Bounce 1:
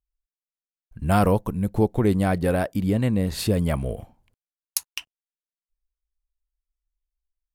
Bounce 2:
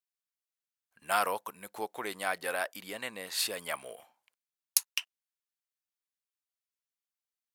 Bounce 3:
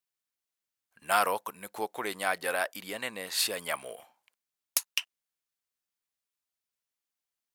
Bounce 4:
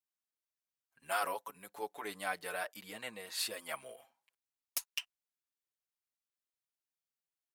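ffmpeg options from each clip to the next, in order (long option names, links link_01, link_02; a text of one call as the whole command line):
ffmpeg -i in.wav -af "highpass=1100" out.wav
ffmpeg -i in.wav -af "aeval=exprs='0.178*(abs(mod(val(0)/0.178+3,4)-2)-1)':channel_layout=same,volume=3dB" out.wav
ffmpeg -i in.wav -filter_complex "[0:a]asplit=2[link_01][link_02];[link_02]adelay=6,afreqshift=0.31[link_03];[link_01][link_03]amix=inputs=2:normalize=1,volume=-5.5dB" out.wav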